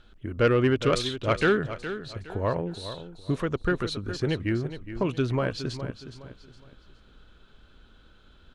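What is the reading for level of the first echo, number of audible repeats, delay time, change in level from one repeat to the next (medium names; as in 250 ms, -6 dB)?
-11.5 dB, 3, 415 ms, -10.0 dB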